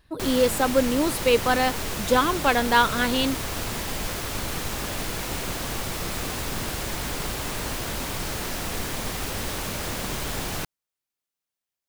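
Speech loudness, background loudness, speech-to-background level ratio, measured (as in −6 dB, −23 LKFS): −22.5 LKFS, −29.5 LKFS, 7.0 dB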